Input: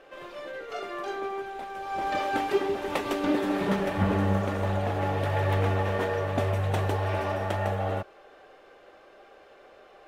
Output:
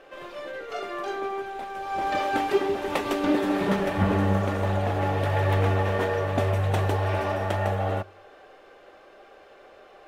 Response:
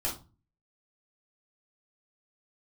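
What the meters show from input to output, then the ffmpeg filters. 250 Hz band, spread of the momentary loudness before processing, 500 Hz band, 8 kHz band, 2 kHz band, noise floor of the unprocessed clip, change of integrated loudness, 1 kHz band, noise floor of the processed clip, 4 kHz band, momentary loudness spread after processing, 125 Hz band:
+2.5 dB, 11 LU, +2.5 dB, +2.0 dB, +2.5 dB, -54 dBFS, +2.5 dB, +2.5 dB, -52 dBFS, +2.0 dB, 11 LU, +3.0 dB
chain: -filter_complex "[0:a]asplit=2[s0][s1];[1:a]atrim=start_sample=2205[s2];[s1][s2]afir=irnorm=-1:irlink=0,volume=0.0422[s3];[s0][s3]amix=inputs=2:normalize=0,volume=1.26"

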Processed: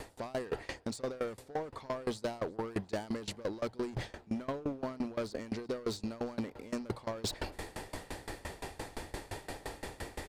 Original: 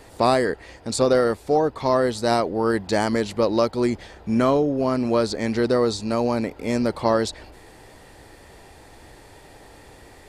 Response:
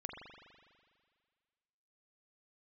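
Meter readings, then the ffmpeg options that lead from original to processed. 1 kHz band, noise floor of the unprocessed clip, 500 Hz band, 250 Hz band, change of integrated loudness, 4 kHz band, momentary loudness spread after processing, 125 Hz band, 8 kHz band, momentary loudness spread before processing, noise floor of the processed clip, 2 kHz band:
-18.0 dB, -48 dBFS, -17.5 dB, -15.5 dB, -17.5 dB, -12.5 dB, 7 LU, -13.5 dB, -12.0 dB, 6 LU, -58 dBFS, -13.5 dB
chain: -filter_complex "[0:a]bandreject=f=60:t=h:w=6,bandreject=f=120:t=h:w=6,alimiter=limit=0.224:level=0:latency=1:release=13,areverse,acompressor=threshold=0.0141:ratio=8,areverse,asoftclip=type=hard:threshold=0.015,asplit=2[s0][s1];[s1]aecho=0:1:356|712|1068|1424:0.0631|0.0379|0.0227|0.0136[s2];[s0][s2]amix=inputs=2:normalize=0,aeval=exprs='val(0)*pow(10,-23*if(lt(mod(5.8*n/s,1),2*abs(5.8)/1000),1-mod(5.8*n/s,1)/(2*abs(5.8)/1000),(mod(5.8*n/s,1)-2*abs(5.8)/1000)/(1-2*abs(5.8)/1000))/20)':c=same,volume=3.16"

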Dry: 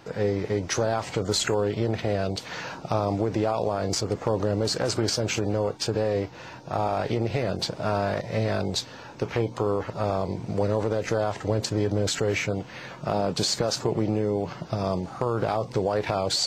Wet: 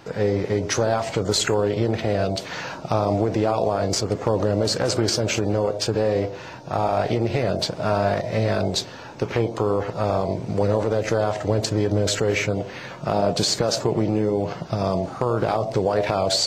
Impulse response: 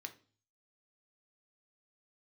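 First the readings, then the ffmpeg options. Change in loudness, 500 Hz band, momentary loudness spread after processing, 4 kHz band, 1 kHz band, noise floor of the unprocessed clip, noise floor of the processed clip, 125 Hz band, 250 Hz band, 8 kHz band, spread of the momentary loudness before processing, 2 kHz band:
+4.0 dB, +4.5 dB, 5 LU, +3.5 dB, +4.0 dB, -43 dBFS, -37 dBFS, +3.5 dB, +4.0 dB, +3.5 dB, 5 LU, +3.5 dB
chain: -filter_complex "[0:a]asplit=2[s0][s1];[s1]lowpass=f=630:t=q:w=4.9[s2];[1:a]atrim=start_sample=2205,adelay=85[s3];[s2][s3]afir=irnorm=-1:irlink=0,volume=0.335[s4];[s0][s4]amix=inputs=2:normalize=0,volume=1.5"

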